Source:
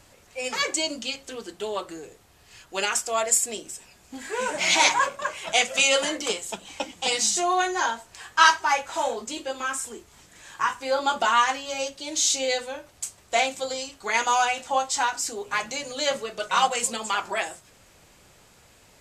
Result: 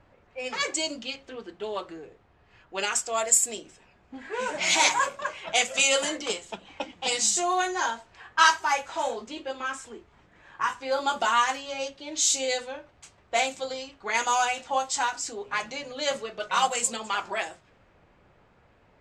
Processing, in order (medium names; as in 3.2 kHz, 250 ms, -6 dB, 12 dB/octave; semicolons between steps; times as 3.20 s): level-controlled noise filter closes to 1.7 kHz, open at -19 dBFS; dynamic bell 7.5 kHz, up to +5 dB, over -42 dBFS, Q 4.6; trim -2.5 dB